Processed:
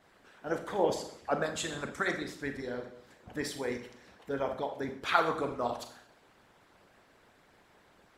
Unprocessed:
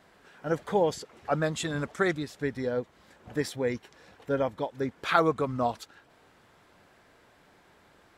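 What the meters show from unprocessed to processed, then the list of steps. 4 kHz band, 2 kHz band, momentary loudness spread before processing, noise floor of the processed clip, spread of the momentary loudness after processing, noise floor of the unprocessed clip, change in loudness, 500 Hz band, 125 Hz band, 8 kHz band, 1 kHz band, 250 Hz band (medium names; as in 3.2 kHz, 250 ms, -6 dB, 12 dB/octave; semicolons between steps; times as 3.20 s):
-1.0 dB, -2.0 dB, 14 LU, -64 dBFS, 16 LU, -61 dBFS, -4.0 dB, -5.0 dB, -10.0 dB, -1.0 dB, -2.5 dB, -6.0 dB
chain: Schroeder reverb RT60 0.66 s, combs from 29 ms, DRR 2.5 dB; harmonic-percussive split harmonic -13 dB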